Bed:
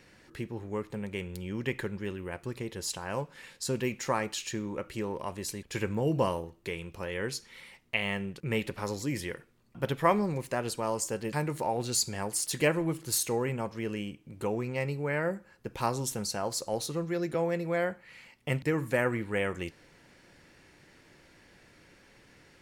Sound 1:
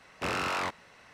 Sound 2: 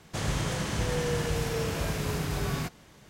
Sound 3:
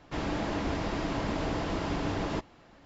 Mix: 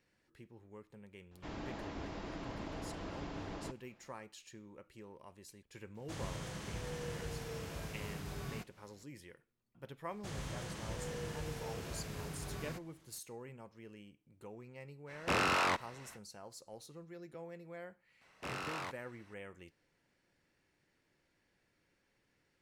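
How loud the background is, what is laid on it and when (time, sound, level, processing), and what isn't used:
bed -19 dB
1.31 add 3 -12.5 dB
5.95 add 2 -13.5 dB
10.1 add 2 -13.5 dB
15.06 add 1, fades 0.05 s
18.21 add 1 -11 dB + high shelf 11000 Hz +4.5 dB

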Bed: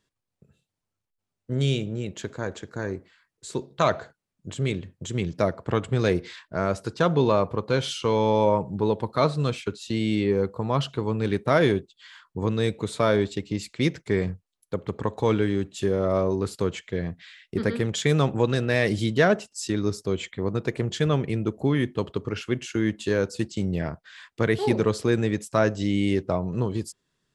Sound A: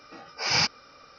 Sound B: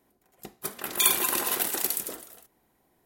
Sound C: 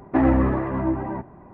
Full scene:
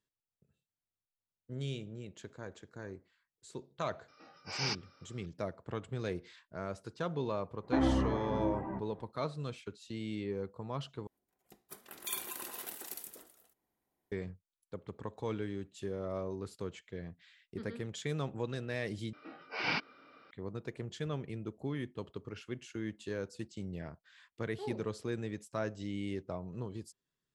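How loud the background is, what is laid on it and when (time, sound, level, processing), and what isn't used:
bed -15 dB
4.08 add A -12.5 dB + HPF 120 Hz
7.58 add C -11 dB, fades 0.10 s
11.07 replace with B -16.5 dB
19.13 replace with A -1 dB + speaker cabinet 240–3000 Hz, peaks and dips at 300 Hz +4 dB, 530 Hz -8 dB, 830 Hz -8 dB, 1200 Hz -6 dB, 1800 Hz -6 dB, 2600 Hz -5 dB

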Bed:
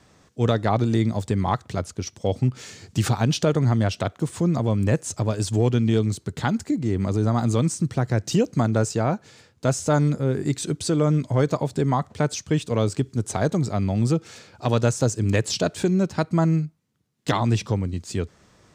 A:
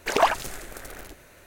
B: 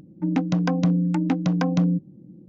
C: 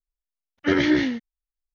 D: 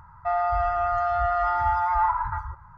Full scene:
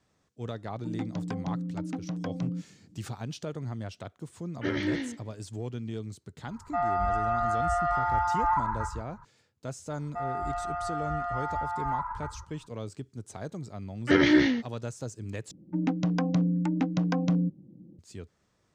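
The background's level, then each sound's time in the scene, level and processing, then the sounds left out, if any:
bed -16 dB
0.63 add B -12.5 dB
3.97 add C -10.5 dB + warbling echo 0.146 s, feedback 33%, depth 156 cents, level -21 dB
6.48 add D -3.5 dB
9.9 add D -9 dB
13.43 add C -1 dB
15.51 replace with B -5 dB
not used: A

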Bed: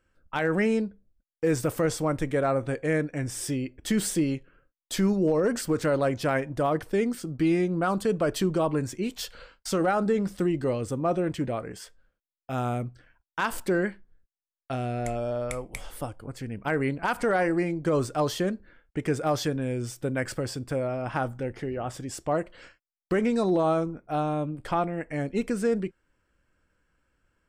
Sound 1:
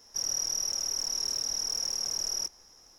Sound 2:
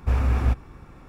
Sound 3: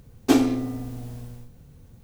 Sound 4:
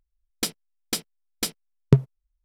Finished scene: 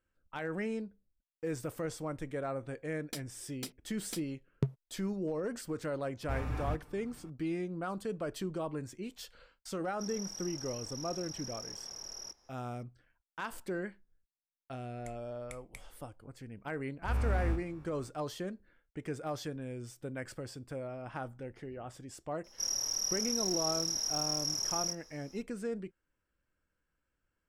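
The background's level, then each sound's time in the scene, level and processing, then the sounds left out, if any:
bed -12 dB
2.7 add 4 -15.5 dB
6.22 add 2 -11.5 dB + comb 6.7 ms, depth 58%
9.85 add 1 -7.5 dB + high shelf 5000 Hz -11 dB
17.02 add 2 -9 dB + time blur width 85 ms
22.44 add 1 -4.5 dB + doubler 30 ms -4 dB
not used: 3

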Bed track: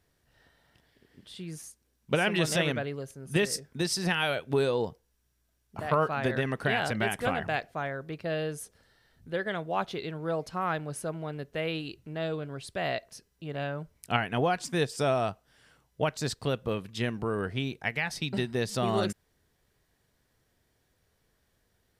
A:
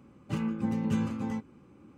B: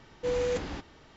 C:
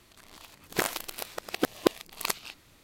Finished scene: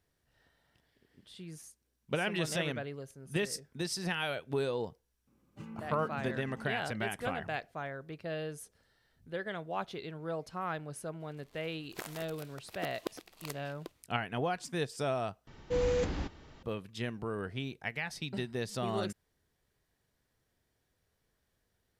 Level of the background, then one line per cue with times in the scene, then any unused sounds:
bed track -6.5 dB
5.27 add A -15 dB
11.2 add C -15 dB + reverse delay 0.453 s, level -9 dB
15.47 replace with B -2.5 dB + low shelf 210 Hz +7.5 dB

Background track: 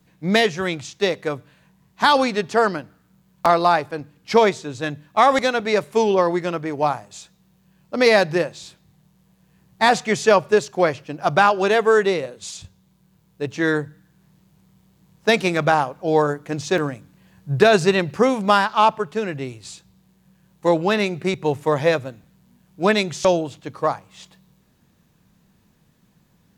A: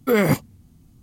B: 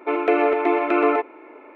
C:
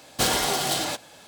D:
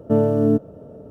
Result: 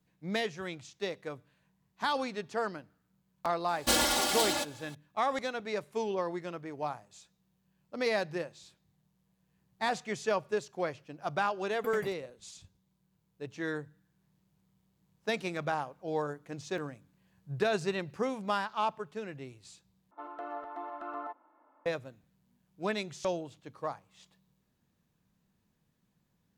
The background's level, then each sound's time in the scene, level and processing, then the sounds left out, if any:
background track -15.5 dB
3.68 add C -6 dB + comb 3.5 ms, depth 84%
11.75 add A -16.5 dB + dB-ramp tremolo decaying 11 Hz, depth 26 dB
20.11 replace with B -16 dB + fixed phaser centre 980 Hz, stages 4
not used: D

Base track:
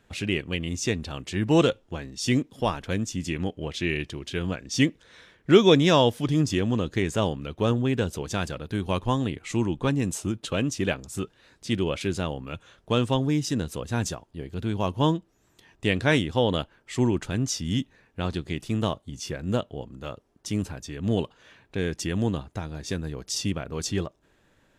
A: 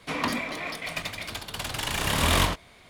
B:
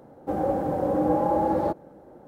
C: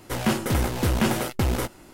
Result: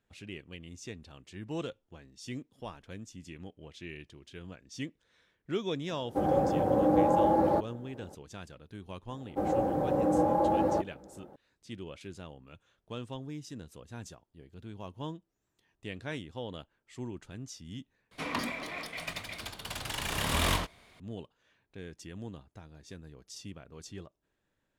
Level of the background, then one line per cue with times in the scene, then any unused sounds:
base track -17 dB
5.88 add B -1.5 dB
9.09 add B -3.5 dB
18.11 replace with A -6 dB
not used: C

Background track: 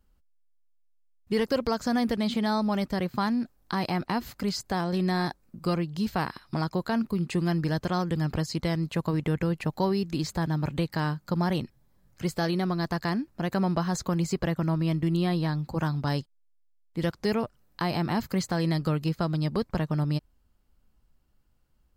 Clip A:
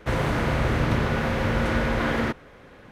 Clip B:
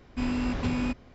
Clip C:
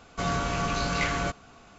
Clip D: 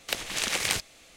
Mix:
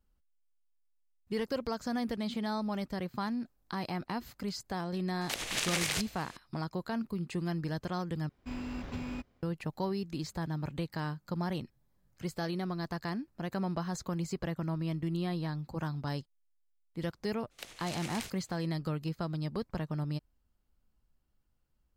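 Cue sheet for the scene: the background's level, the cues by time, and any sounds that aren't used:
background track -8 dB
5.21 add D -0.5 dB + limiter -18 dBFS
8.29 replace with B -9.5 dB + G.711 law mismatch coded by A
17.5 add D -15.5 dB, fades 0.02 s
not used: A, C

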